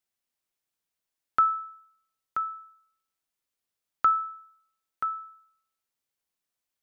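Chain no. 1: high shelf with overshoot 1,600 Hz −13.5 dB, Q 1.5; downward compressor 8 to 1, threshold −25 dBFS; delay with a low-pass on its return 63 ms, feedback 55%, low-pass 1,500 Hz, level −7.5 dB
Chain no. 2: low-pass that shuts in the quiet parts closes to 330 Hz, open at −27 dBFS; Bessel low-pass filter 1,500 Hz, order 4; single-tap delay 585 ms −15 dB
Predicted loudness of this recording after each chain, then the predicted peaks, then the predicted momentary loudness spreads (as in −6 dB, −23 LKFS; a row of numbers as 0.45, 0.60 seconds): −33.5, −32.0 LKFS; −14.5, −16.0 dBFS; 16, 23 LU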